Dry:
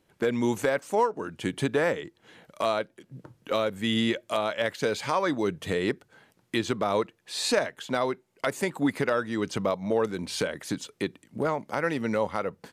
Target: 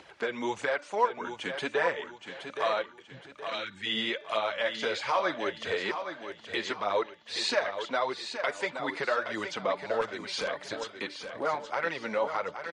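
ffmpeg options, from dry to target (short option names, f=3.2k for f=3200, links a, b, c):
-filter_complex "[0:a]highpass=43,acrossover=split=480 5600:gain=0.158 1 0.0891[a][b][c];[a][b][c]amix=inputs=3:normalize=0,bandreject=f=292.8:t=h:w=4,bandreject=f=585.6:t=h:w=4,bandreject=f=878.4:t=h:w=4,bandreject=f=1.1712k:t=h:w=4,bandreject=f=1.464k:t=h:w=4,bandreject=f=1.7568k:t=h:w=4,bandreject=f=2.0496k:t=h:w=4,bandreject=f=2.3424k:t=h:w=4,bandreject=f=2.6352k:t=h:w=4,bandreject=f=2.928k:t=h:w=4,bandreject=f=3.2208k:t=h:w=4,bandreject=f=3.5136k:t=h:w=4,bandreject=f=3.8064k:t=h:w=4,bandreject=f=4.0992k:t=h:w=4,bandreject=f=4.392k:t=h:w=4,bandreject=f=4.6848k:t=h:w=4,bandreject=f=4.9776k:t=h:w=4,asplit=2[d][e];[e]alimiter=limit=-22dB:level=0:latency=1:release=117,volume=-2dB[f];[d][f]amix=inputs=2:normalize=0,acompressor=mode=upward:threshold=-36dB:ratio=2.5,flanger=delay=0.1:depth=5.9:regen=14:speed=1.6:shape=triangular,asplit=3[g][h][i];[g]afade=t=out:st=3.19:d=0.02[j];[h]asuperstop=centerf=700:order=12:qfactor=0.63,afade=t=in:st=3.19:d=0.02,afade=t=out:st=3.85:d=0.02[k];[i]afade=t=in:st=3.85:d=0.02[l];[j][k][l]amix=inputs=3:normalize=0,asettb=1/sr,asplit=3[m][n][o];[m]atrim=end=4.514[p];[n]atrim=start=4.51:end=5.27,asetpts=PTS-STARTPTS,afade=t=in:d=0.004:c=qsin,afade=t=out:st=0.756:d=0.004:c=qsin,asplit=2[q][r];[r]adelay=21,volume=-9dB[s];[q][s]amix=inputs=2:normalize=0,atrim=end_sample=33516[t];[o]atrim=start=5.266[u];[p][t]acrossfade=d=0.004:c1=hsin:c2=qsin[v];[v][u]acrossfade=d=0.004:c1=qsin:c2=hsin,asplit=3[w][x][y];[w]afade=t=out:st=10:d=0.02[z];[x]aeval=exprs='0.0562*(abs(mod(val(0)/0.0562+3,4)-2)-1)':c=same,afade=t=in:st=10:d=0.02,afade=t=out:st=10.47:d=0.02[aa];[y]afade=t=in:st=10.47:d=0.02[ab];[z][aa][ab]amix=inputs=3:normalize=0,aecho=1:1:821|1642|2463|3284:0.376|0.132|0.046|0.0161" -ar 44100 -c:a libmp3lame -b:a 48k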